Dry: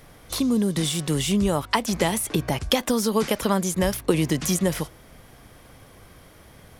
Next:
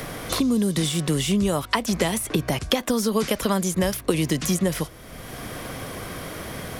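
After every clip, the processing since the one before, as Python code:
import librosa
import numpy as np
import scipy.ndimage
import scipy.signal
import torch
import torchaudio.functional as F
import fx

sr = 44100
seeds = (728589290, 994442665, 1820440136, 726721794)

y = fx.notch(x, sr, hz=860.0, q=12.0)
y = fx.band_squash(y, sr, depth_pct=70)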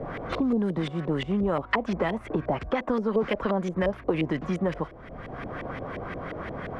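y = fx.dynamic_eq(x, sr, hz=110.0, q=0.89, threshold_db=-37.0, ratio=4.0, max_db=-6)
y = 10.0 ** (-15.0 / 20.0) * np.tanh(y / 10.0 ** (-15.0 / 20.0))
y = fx.filter_lfo_lowpass(y, sr, shape='saw_up', hz=5.7, low_hz=500.0, high_hz=2400.0, q=1.7)
y = F.gain(torch.from_numpy(y), -1.5).numpy()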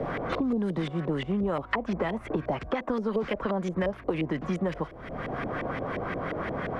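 y = fx.band_squash(x, sr, depth_pct=70)
y = F.gain(torch.from_numpy(y), -2.5).numpy()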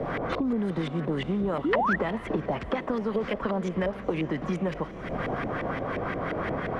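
y = fx.recorder_agc(x, sr, target_db=-21.5, rise_db_per_s=16.0, max_gain_db=30)
y = fx.echo_diffused(y, sr, ms=480, feedback_pct=57, wet_db=-14)
y = fx.spec_paint(y, sr, seeds[0], shape='rise', start_s=1.64, length_s=0.32, low_hz=260.0, high_hz=2000.0, level_db=-25.0)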